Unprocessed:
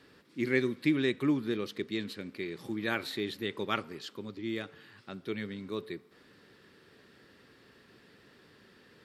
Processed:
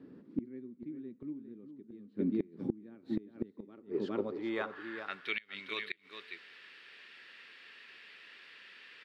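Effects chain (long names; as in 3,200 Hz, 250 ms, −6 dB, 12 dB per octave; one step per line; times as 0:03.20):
band-pass filter sweep 240 Hz → 2,500 Hz, 0:03.56–0:05.33
single-tap delay 408 ms −8.5 dB
gate with flip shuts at −34 dBFS, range −26 dB
level +13.5 dB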